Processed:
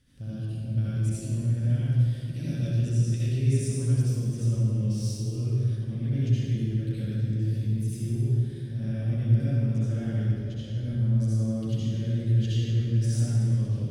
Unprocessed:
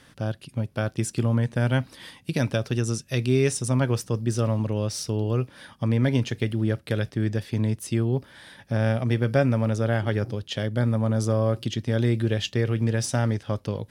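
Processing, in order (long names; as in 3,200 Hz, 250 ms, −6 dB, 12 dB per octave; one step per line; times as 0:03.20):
0:10.22–0:10.77: output level in coarse steps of 18 dB
guitar amp tone stack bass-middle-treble 10-0-1
brickwall limiter −35 dBFS, peak gain reduction 7.5 dB
convolution reverb RT60 2.4 s, pre-delay 60 ms, DRR −10 dB
level +4.5 dB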